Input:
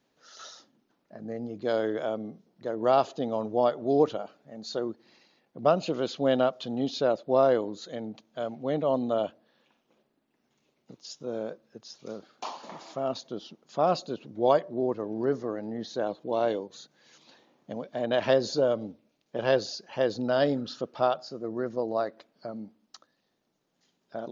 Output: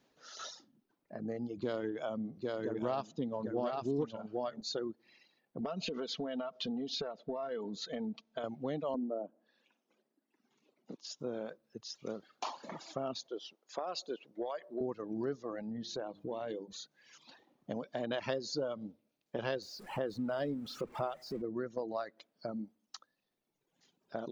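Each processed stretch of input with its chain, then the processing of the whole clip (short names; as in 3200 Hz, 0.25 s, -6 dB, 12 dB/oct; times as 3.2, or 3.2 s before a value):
1.57–4.61 low shelf 350 Hz +6 dB + echo 0.798 s -4 dB + Doppler distortion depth 0.16 ms
5.6–8.44 LPF 6400 Hz 24 dB/oct + compressor 4:1, threshold -33 dBFS + comb 4.5 ms, depth 55%
8.94–11.19 HPF 200 Hz 24 dB/oct + tilt -1.5 dB/oct + treble ducked by the level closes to 680 Hz, closed at -25 dBFS
13.27–14.81 Chebyshev high-pass 470 Hz + compressor, threshold -28 dBFS
15.61–16.73 low shelf 350 Hz +6.5 dB + notches 50/100/150/200/250/300/350 Hz + compressor 2:1, threshold -39 dBFS
19.62–21.42 zero-crossing step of -38 dBFS + high shelf 2500 Hz -11.5 dB
whole clip: reverb removal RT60 1.5 s; dynamic EQ 610 Hz, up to -4 dB, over -37 dBFS, Q 1.4; compressor 3:1, threshold -36 dBFS; gain +1 dB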